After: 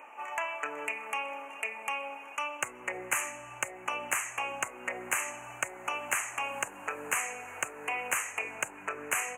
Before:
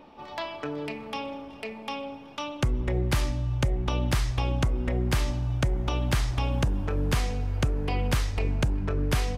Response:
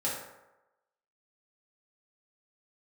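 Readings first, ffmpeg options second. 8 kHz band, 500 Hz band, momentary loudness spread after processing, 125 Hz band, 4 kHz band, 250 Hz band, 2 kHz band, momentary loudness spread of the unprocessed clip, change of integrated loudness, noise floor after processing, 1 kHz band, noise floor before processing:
+6.5 dB, −7.5 dB, 6 LU, −33.0 dB, −7.5 dB, −18.0 dB, +4.5 dB, 9 LU, −5.0 dB, −48 dBFS, +0.5 dB, −44 dBFS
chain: -filter_complex "[0:a]highpass=910,equalizer=frequency=5600:width_type=o:width=2:gain=10,asplit=2[link_01][link_02];[link_02]acompressor=threshold=-40dB:ratio=6,volume=0.5dB[link_03];[link_01][link_03]amix=inputs=2:normalize=0,asoftclip=type=tanh:threshold=-9dB,asuperstop=centerf=4300:order=12:qfactor=1.1"

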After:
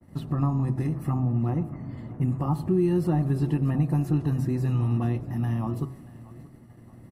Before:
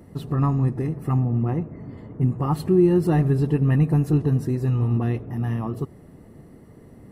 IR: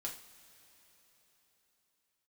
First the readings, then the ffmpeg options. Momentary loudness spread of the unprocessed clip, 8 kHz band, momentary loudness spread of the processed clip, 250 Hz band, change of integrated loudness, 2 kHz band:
11 LU, can't be measured, 12 LU, −4.0 dB, −4.0 dB, −6.0 dB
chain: -filter_complex "[0:a]agate=range=-33dB:threshold=-42dB:ratio=3:detection=peak,equalizer=frequency=440:width_type=o:width=0.23:gain=-14,acrossover=split=1200[link_01][link_02];[link_02]alimiter=level_in=12.5dB:limit=-24dB:level=0:latency=1:release=455,volume=-12.5dB[link_03];[link_01][link_03]amix=inputs=2:normalize=0,bandreject=frequency=65.63:width_type=h:width=4,bandreject=frequency=131.26:width_type=h:width=4,bandreject=frequency=196.89:width_type=h:width=4,bandreject=frequency=262.52:width_type=h:width=4,bandreject=frequency=328.15:width_type=h:width=4,bandreject=frequency=393.78:width_type=h:width=4,bandreject=frequency=459.41:width_type=h:width=4,bandreject=frequency=525.04:width_type=h:width=4,bandreject=frequency=590.67:width_type=h:width=4,bandreject=frequency=656.3:width_type=h:width=4,bandreject=frequency=721.93:width_type=h:width=4,bandreject=frequency=787.56:width_type=h:width=4,bandreject=frequency=853.19:width_type=h:width=4,bandreject=frequency=918.82:width_type=h:width=4,bandreject=frequency=984.45:width_type=h:width=4,bandreject=frequency=1050.08:width_type=h:width=4,bandreject=frequency=1115.71:width_type=h:width=4,bandreject=frequency=1181.34:width_type=h:width=4,bandreject=frequency=1246.97:width_type=h:width=4,bandreject=frequency=1312.6:width_type=h:width=4,bandreject=frequency=1378.23:width_type=h:width=4,bandreject=frequency=1443.86:width_type=h:width=4,bandreject=frequency=1509.49:width_type=h:width=4,asplit=2[link_04][link_05];[link_05]aecho=0:1:629|1258|1887:0.0891|0.0401|0.018[link_06];[link_04][link_06]amix=inputs=2:normalize=0,acrossover=split=350|1300|2800[link_07][link_08][link_09][link_10];[link_07]acompressor=threshold=-22dB:ratio=4[link_11];[link_08]acompressor=threshold=-29dB:ratio=4[link_12];[link_09]acompressor=threshold=-52dB:ratio=4[link_13];[link_10]acompressor=threshold=-56dB:ratio=4[link_14];[link_11][link_12][link_13][link_14]amix=inputs=4:normalize=0,adynamicequalizer=threshold=0.00355:dfrequency=2400:dqfactor=0.7:tfrequency=2400:tqfactor=0.7:attack=5:release=100:ratio=0.375:range=2:mode=boostabove:tftype=highshelf"

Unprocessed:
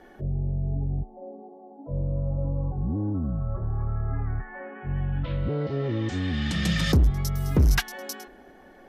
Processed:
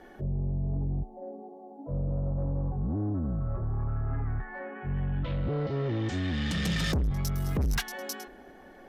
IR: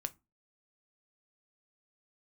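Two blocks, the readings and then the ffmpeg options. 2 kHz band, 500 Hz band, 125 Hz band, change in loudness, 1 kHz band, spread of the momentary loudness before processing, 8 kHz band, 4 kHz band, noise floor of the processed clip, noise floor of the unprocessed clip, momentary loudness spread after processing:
−3.5 dB, −2.5 dB, −4.0 dB, −4.0 dB, −2.0 dB, 16 LU, −3.0 dB, −3.5 dB, −51 dBFS, −51 dBFS, 12 LU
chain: -af "asoftclip=type=tanh:threshold=-24dB"

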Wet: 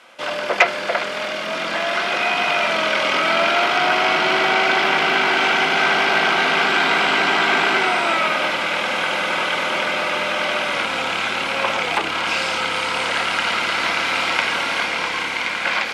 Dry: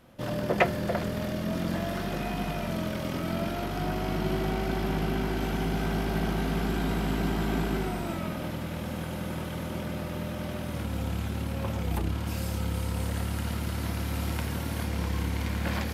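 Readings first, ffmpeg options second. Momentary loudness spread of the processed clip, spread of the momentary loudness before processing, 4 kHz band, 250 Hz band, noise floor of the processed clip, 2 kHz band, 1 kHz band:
5 LU, 6 LU, +20.0 dB, −0.5 dB, −26 dBFS, +21.0 dB, +16.5 dB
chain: -filter_complex "[0:a]lowpass=frequency=9200:width=0.5412,lowpass=frequency=9200:width=1.3066,equalizer=frequency=2000:width_type=o:width=1.7:gain=11,bandreject=frequency=1800:width=6.4,dynaudnorm=framelen=370:gausssize=9:maxgain=7dB,asoftclip=type=tanh:threshold=-14dB,acrossover=split=5300[link_01][link_02];[link_02]acompressor=threshold=-55dB:ratio=4:attack=1:release=60[link_03];[link_01][link_03]amix=inputs=2:normalize=0,highpass=560,highshelf=frequency=4900:gain=5,volume=8.5dB"

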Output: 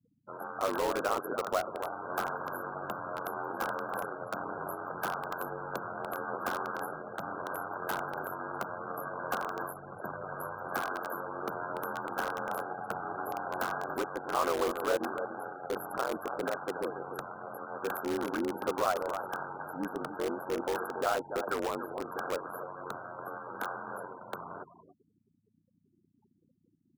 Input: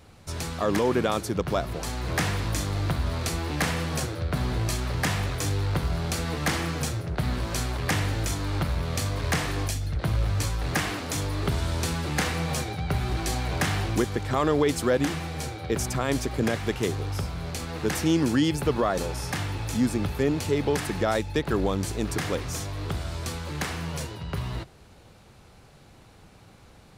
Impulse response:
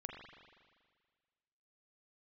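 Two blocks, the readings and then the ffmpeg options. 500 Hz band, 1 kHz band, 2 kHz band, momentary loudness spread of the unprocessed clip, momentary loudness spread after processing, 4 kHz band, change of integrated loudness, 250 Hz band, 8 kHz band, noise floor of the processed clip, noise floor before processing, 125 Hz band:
−5.5 dB, −1.0 dB, −6.0 dB, 8 LU, 10 LU, −14.5 dB, −8.0 dB, −12.5 dB, −15.5 dB, −72 dBFS, −52 dBFS, −24.5 dB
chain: -filter_complex "[0:a]afftfilt=real='re*(1-between(b*sr/4096,1600,11000))':imag='im*(1-between(b*sr/4096,1600,11000))':win_size=4096:overlap=0.75,aecho=1:1:285:0.299,aeval=exprs='val(0)+0.00355*(sin(2*PI*60*n/s)+sin(2*PI*2*60*n/s)/2+sin(2*PI*3*60*n/s)/3+sin(2*PI*4*60*n/s)/4+sin(2*PI*5*60*n/s)/5)':channel_layout=same,adynamicequalizer=threshold=0.00282:dfrequency=1700:dqfactor=3.9:tfrequency=1700:tqfactor=3.9:attack=5:release=100:ratio=0.375:range=1.5:mode=boostabove:tftype=bell,aeval=exprs='val(0)*sin(2*PI*45*n/s)':channel_layout=same,afftfilt=real='re*gte(hypot(re,im),0.00794)':imag='im*gte(hypot(re,im),0.00794)':win_size=1024:overlap=0.75,highpass=560,highshelf=frequency=11000:gain=-3.5,asplit=2[link_01][link_02];[link_02]aeval=exprs='(mod(25.1*val(0)+1,2)-1)/25.1':channel_layout=same,volume=-6.5dB[link_03];[link_01][link_03]amix=inputs=2:normalize=0"

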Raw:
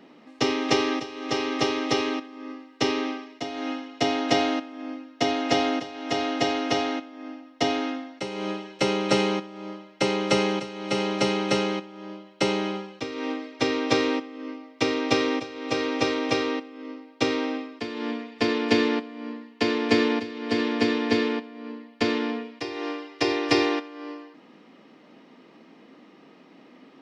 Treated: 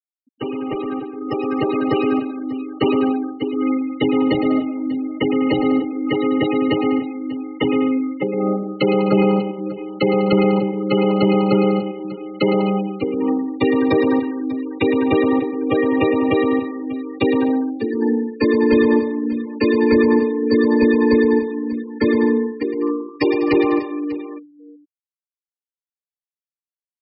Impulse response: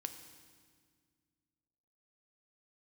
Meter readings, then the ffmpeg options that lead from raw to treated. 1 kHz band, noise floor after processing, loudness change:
+3.0 dB, below −85 dBFS, +7.5 dB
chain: -filter_complex "[0:a]aresample=11025,asoftclip=type=tanh:threshold=-21.5dB,aresample=44100,acrossover=split=410[link_01][link_02];[link_02]acompressor=threshold=-29dB:ratio=6[link_03];[link_01][link_03]amix=inputs=2:normalize=0,asuperstop=centerf=690:order=12:qfactor=5.2,afftfilt=real='re*gte(hypot(re,im),0.0631)':imag='im*gte(hypot(re,im),0.0631)':win_size=1024:overlap=0.75,dynaudnorm=framelen=180:gausssize=17:maxgain=9.5dB,asplit=2[link_04][link_05];[link_05]aecho=0:1:111|198|255|593:0.355|0.2|0.112|0.15[link_06];[link_04][link_06]amix=inputs=2:normalize=0,volume=3.5dB"

